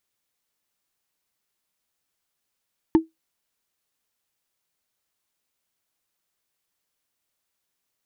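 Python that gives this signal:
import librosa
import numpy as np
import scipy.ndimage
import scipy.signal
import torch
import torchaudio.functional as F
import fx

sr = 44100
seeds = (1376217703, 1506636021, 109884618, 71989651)

y = fx.strike_wood(sr, length_s=0.45, level_db=-8, body='bar', hz=323.0, decay_s=0.16, tilt_db=10, modes=5)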